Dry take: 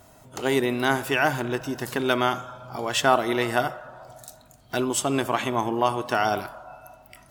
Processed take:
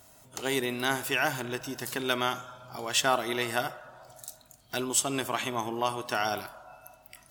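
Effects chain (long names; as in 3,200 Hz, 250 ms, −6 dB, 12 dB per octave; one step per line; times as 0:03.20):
high-shelf EQ 2,300 Hz +10 dB
level −8 dB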